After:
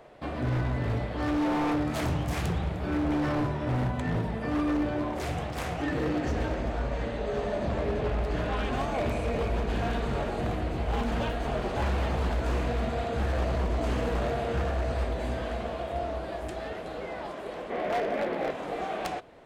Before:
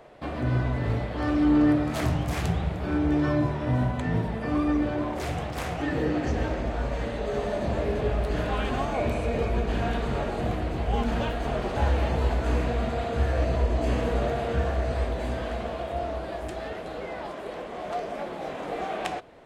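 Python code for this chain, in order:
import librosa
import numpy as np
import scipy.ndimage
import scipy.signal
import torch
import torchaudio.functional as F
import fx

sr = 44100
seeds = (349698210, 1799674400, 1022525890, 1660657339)

y = fx.graphic_eq(x, sr, hz=(250, 500, 2000, 8000), db=(6, 7, 9, -7), at=(17.7, 18.51))
y = 10.0 ** (-20.5 / 20.0) * (np.abs((y / 10.0 ** (-20.5 / 20.0) + 3.0) % 4.0 - 2.0) - 1.0)
y = fx.high_shelf(y, sr, hz=8300.0, db=-8.5, at=(6.79, 8.73))
y = F.gain(torch.from_numpy(y), -1.5).numpy()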